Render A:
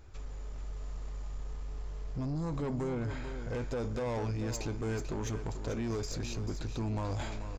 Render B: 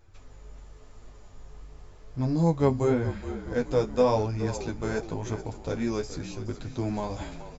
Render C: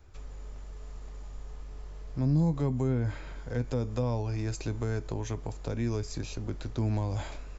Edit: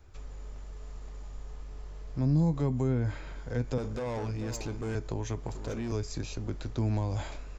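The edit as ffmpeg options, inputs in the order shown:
-filter_complex "[0:a]asplit=2[a][b];[2:a]asplit=3[c][d][e];[c]atrim=end=3.782[f];[a]atrim=start=3.778:end=4.952[g];[d]atrim=start=4.948:end=5.472[h];[b]atrim=start=5.468:end=5.922[i];[e]atrim=start=5.918[j];[f][g]acrossfade=d=0.004:c1=hsin:c2=hsin[k];[k][h]acrossfade=d=0.004:c1=hsin:c2=hsin[l];[l][i]acrossfade=d=0.004:c1=hsin:c2=hsin[m];[m][j]acrossfade=d=0.004:c1=hsin:c2=hsin"

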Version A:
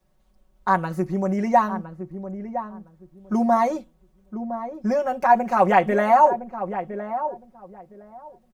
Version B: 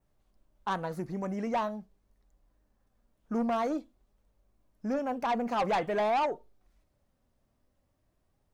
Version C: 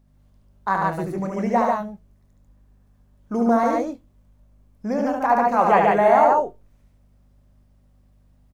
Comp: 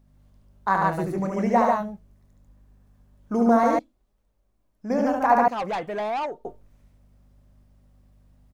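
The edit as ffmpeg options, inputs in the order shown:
-filter_complex "[1:a]asplit=2[a][b];[2:a]asplit=3[c][d][e];[c]atrim=end=3.792[f];[a]atrim=start=3.788:end=4.902[g];[d]atrim=start=4.898:end=5.482[h];[b]atrim=start=5.478:end=6.452[i];[e]atrim=start=6.448[j];[f][g]acrossfade=d=0.004:c1=hsin:c2=hsin[k];[k][h]acrossfade=d=0.004:c1=hsin:c2=hsin[l];[l][i]acrossfade=d=0.004:c1=hsin:c2=hsin[m];[m][j]acrossfade=d=0.004:c1=hsin:c2=hsin"

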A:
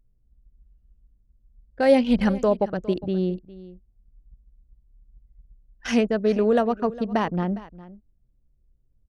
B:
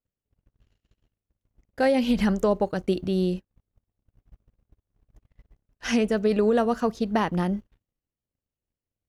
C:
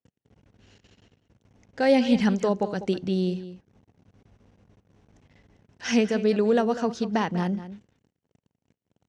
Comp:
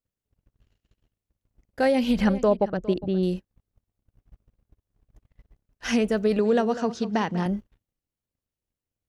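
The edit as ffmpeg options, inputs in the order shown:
-filter_complex "[1:a]asplit=3[a][b][c];[a]atrim=end=2.212[d];[0:a]atrim=start=2.208:end=3.232[e];[b]atrim=start=3.228:end=6.392[f];[2:a]atrim=start=6.388:end=7.462[g];[c]atrim=start=7.458[h];[d][e]acrossfade=d=0.004:c1=hsin:c2=hsin[i];[i][f]acrossfade=d=0.004:c1=hsin:c2=hsin[j];[j][g]acrossfade=d=0.004:c1=hsin:c2=hsin[k];[k][h]acrossfade=d=0.004:c1=hsin:c2=hsin"

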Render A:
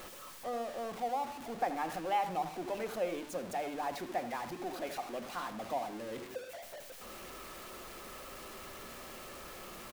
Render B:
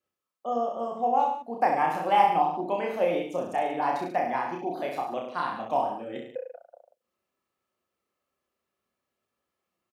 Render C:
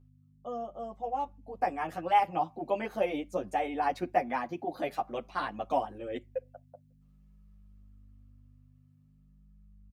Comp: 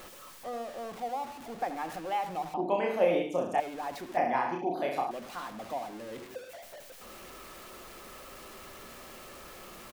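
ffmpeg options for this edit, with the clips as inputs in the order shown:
-filter_complex "[1:a]asplit=2[a][b];[0:a]asplit=3[c][d][e];[c]atrim=end=2.542[f];[a]atrim=start=2.538:end=3.602[g];[d]atrim=start=3.598:end=4.172[h];[b]atrim=start=4.168:end=5.112[i];[e]atrim=start=5.108[j];[f][g]acrossfade=d=0.004:c1=hsin:c2=hsin[k];[k][h]acrossfade=d=0.004:c1=hsin:c2=hsin[l];[l][i]acrossfade=d=0.004:c1=hsin:c2=hsin[m];[m][j]acrossfade=d=0.004:c1=hsin:c2=hsin"

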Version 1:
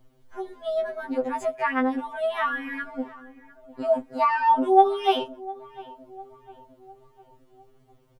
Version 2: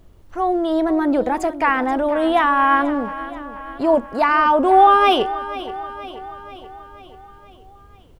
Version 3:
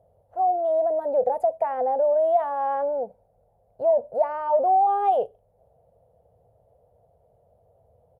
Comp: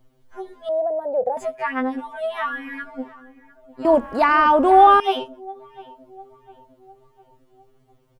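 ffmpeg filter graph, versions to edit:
-filter_complex "[0:a]asplit=3[a][b][c];[a]atrim=end=0.692[d];[2:a]atrim=start=0.688:end=1.372[e];[b]atrim=start=1.368:end=3.852[f];[1:a]atrim=start=3.848:end=5.002[g];[c]atrim=start=4.998[h];[d][e]acrossfade=d=0.004:c1=hsin:c2=hsin[i];[i][f]acrossfade=d=0.004:c1=hsin:c2=hsin[j];[j][g]acrossfade=d=0.004:c1=hsin:c2=hsin[k];[k][h]acrossfade=d=0.004:c1=hsin:c2=hsin"

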